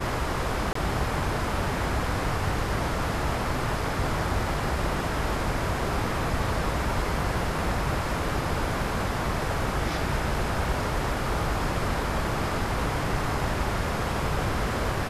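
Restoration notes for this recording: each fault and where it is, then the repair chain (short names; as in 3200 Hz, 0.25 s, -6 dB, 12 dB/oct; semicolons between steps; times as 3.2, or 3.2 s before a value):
0.73–0.75 gap 24 ms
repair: interpolate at 0.73, 24 ms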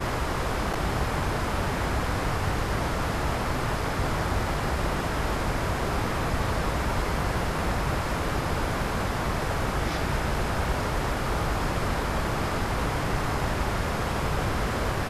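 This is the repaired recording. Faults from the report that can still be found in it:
none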